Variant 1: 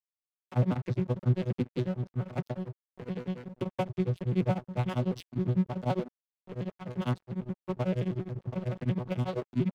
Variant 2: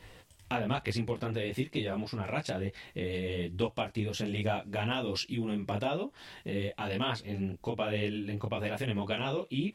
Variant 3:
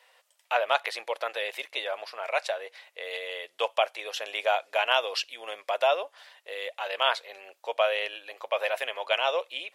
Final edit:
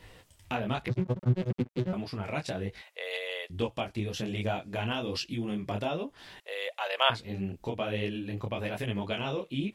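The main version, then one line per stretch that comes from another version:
2
0.88–1.93 from 1
2.82–3.5 from 3
6.4–7.1 from 3

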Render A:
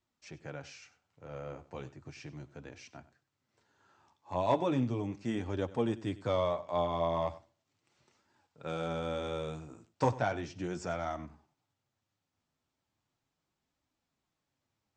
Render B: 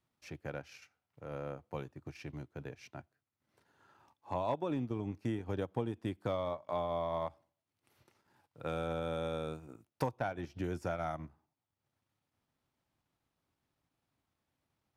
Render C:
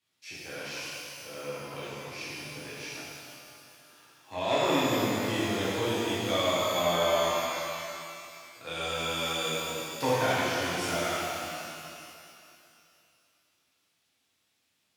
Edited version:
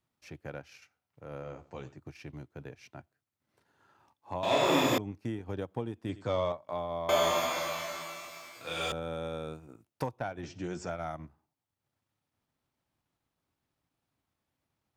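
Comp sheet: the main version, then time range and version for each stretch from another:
B
1.43–1.97 from A
4.43–4.98 from C
6.09–6.52 from A
7.09–8.92 from C
10.43–10.9 from A

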